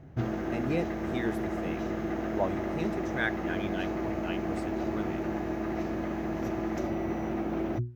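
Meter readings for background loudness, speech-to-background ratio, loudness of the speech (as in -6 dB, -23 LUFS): -33.0 LUFS, -4.0 dB, -37.0 LUFS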